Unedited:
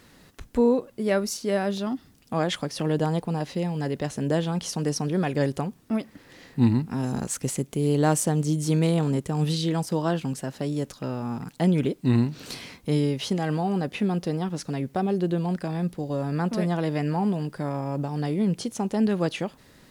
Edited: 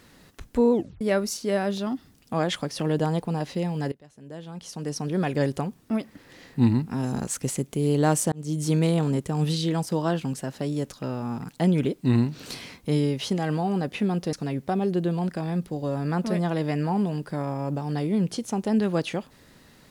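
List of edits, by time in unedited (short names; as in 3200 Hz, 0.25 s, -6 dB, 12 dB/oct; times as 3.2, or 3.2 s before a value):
0.72 tape stop 0.29 s
3.92–5.23 fade in quadratic, from -23.5 dB
8.32–8.62 fade in
14.33–14.6 cut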